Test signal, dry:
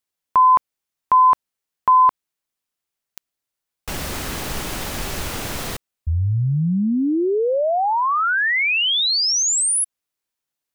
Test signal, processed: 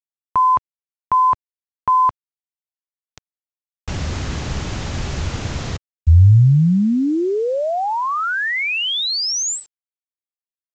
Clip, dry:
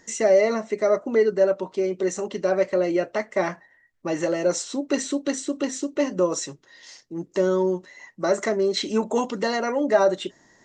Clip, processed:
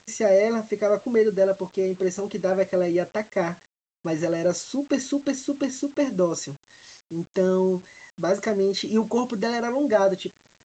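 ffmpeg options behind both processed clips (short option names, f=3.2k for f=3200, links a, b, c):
-af "equalizer=f=90:t=o:w=2.1:g=13,aresample=16000,acrusher=bits=7:mix=0:aa=0.000001,aresample=44100,volume=-2dB"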